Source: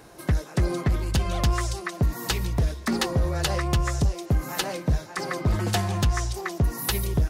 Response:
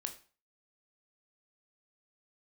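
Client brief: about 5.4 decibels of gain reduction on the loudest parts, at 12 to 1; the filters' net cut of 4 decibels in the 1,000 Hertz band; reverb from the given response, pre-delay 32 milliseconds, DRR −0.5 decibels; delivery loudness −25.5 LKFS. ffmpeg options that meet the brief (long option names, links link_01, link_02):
-filter_complex "[0:a]equalizer=frequency=1000:width_type=o:gain=-5.5,acompressor=threshold=-23dB:ratio=12,asplit=2[link_01][link_02];[1:a]atrim=start_sample=2205,adelay=32[link_03];[link_02][link_03]afir=irnorm=-1:irlink=0,volume=2dB[link_04];[link_01][link_04]amix=inputs=2:normalize=0,volume=1dB"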